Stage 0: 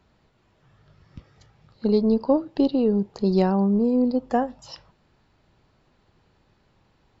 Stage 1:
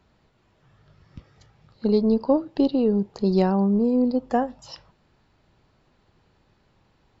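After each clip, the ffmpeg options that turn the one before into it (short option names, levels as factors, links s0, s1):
-af anull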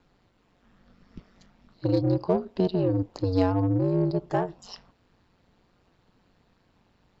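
-filter_complex "[0:a]aeval=exprs='val(0)*sin(2*PI*92*n/s)':c=same,asplit=2[s0][s1];[s1]asoftclip=type=tanh:threshold=0.0501,volume=0.531[s2];[s0][s2]amix=inputs=2:normalize=0,volume=0.75"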